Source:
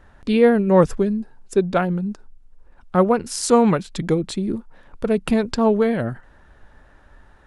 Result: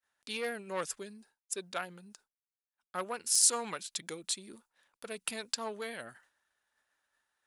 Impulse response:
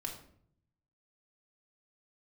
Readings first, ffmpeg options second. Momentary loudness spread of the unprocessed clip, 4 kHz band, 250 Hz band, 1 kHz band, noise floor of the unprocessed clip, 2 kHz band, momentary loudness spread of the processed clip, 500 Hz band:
13 LU, −3.0 dB, −28.5 dB, −17.0 dB, −52 dBFS, −10.5 dB, 20 LU, −22.5 dB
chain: -af "aeval=exprs='0.75*(cos(1*acos(clip(val(0)/0.75,-1,1)))-cos(1*PI/2))+0.188*(cos(2*acos(clip(val(0)/0.75,-1,1)))-cos(2*PI/2))+0.0531*(cos(4*acos(clip(val(0)/0.75,-1,1)))-cos(4*PI/2))+0.0335*(cos(5*acos(clip(val(0)/0.75,-1,1)))-cos(5*PI/2))':channel_layout=same,aderivative,agate=range=-33dB:threshold=-59dB:ratio=3:detection=peak"

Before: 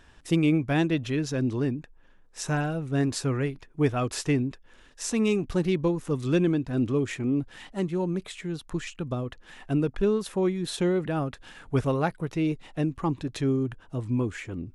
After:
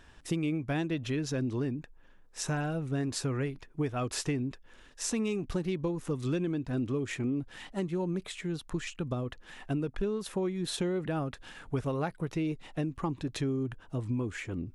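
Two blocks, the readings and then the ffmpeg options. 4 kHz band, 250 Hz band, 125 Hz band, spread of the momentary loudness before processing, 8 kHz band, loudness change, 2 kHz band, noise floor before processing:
−3.0 dB, −6.0 dB, −5.5 dB, 9 LU, −2.0 dB, −6.0 dB, −5.0 dB, −55 dBFS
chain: -af "acompressor=threshold=-27dB:ratio=6,volume=-1dB"

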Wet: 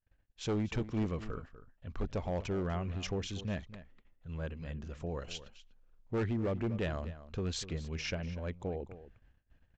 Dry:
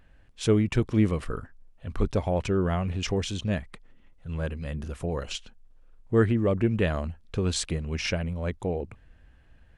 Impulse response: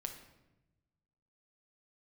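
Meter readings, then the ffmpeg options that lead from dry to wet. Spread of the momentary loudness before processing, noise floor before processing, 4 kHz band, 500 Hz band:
13 LU, −57 dBFS, −8.5 dB, −10.0 dB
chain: -filter_complex "[0:a]agate=range=-29dB:threshold=-53dB:ratio=16:detection=peak,aresample=16000,asoftclip=type=hard:threshold=-20dB,aresample=44100,asplit=2[link_01][link_02];[link_02]adelay=244.9,volume=-14dB,highshelf=frequency=4000:gain=-5.51[link_03];[link_01][link_03]amix=inputs=2:normalize=0,volume=-8.5dB"

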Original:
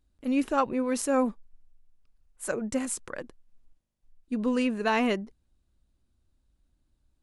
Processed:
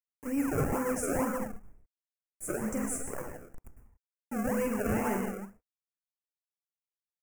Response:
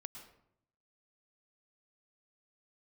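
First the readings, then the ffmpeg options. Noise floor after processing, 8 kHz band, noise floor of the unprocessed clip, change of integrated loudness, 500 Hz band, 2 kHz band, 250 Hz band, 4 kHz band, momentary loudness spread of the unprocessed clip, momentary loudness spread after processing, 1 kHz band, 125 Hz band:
below −85 dBFS, −1.0 dB, −74 dBFS, −4.5 dB, −3.5 dB, −5.0 dB, −4.0 dB, −14.5 dB, 11 LU, 13 LU, −5.5 dB, +8.0 dB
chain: -filter_complex "[0:a]equalizer=frequency=250:width_type=o:width=0.67:gain=-8,equalizer=frequency=630:width_type=o:width=0.67:gain=-10,equalizer=frequency=10000:width_type=o:width=0.67:gain=-5,aecho=1:1:14|46:0.376|0.447,asplit=2[link_01][link_02];[link_02]alimiter=limit=-24dB:level=0:latency=1,volume=-0.5dB[link_03];[link_01][link_03]amix=inputs=2:normalize=0,acrusher=bits=6:mix=0:aa=0.000001[link_04];[1:a]atrim=start_sample=2205,afade=type=out:start_time=0.34:duration=0.01,atrim=end_sample=15435[link_05];[link_04][link_05]afir=irnorm=-1:irlink=0,acrossover=split=2100[link_06][link_07];[link_06]acrusher=samples=32:mix=1:aa=0.000001:lfo=1:lforange=32:lforate=2.1[link_08];[link_08][link_07]amix=inputs=2:normalize=0,asoftclip=type=tanh:threshold=-24dB,asuperstop=centerf=3800:order=4:qfactor=0.7,volume=2.5dB"

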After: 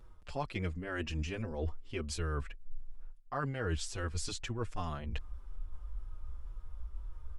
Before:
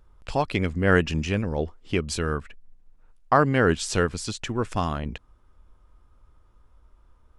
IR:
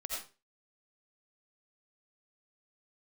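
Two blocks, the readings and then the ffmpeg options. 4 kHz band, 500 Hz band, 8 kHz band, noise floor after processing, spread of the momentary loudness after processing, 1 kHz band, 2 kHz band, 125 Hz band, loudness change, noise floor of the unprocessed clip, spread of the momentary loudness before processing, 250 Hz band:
−10.0 dB, −15.5 dB, −9.5 dB, −51 dBFS, 14 LU, −15.5 dB, −15.0 dB, −10.0 dB, −14.5 dB, −59 dBFS, 11 LU, −15.0 dB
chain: -filter_complex "[0:a]asubboost=boost=5.5:cutoff=78,areverse,acompressor=threshold=-35dB:ratio=10,areverse,asplit=2[link_01][link_02];[link_02]adelay=5.6,afreqshift=-2[link_03];[link_01][link_03]amix=inputs=2:normalize=1,volume=5dB"

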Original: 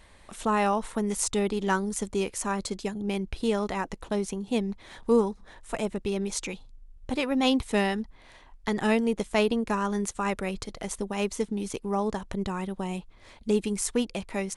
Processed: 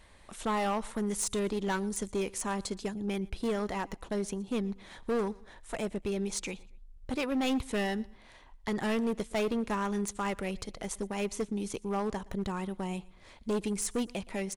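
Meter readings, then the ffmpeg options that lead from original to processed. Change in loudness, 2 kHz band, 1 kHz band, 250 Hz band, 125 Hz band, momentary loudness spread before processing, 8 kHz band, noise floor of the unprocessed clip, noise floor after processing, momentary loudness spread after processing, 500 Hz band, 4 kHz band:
−5.0 dB, −5.0 dB, −5.5 dB, −4.5 dB, −4.0 dB, 10 LU, −3.5 dB, −54 dBFS, −56 dBFS, 8 LU, −5.0 dB, −5.5 dB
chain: -af "asoftclip=type=hard:threshold=-23dB,aecho=1:1:118|236:0.0668|0.0221,volume=-3dB"

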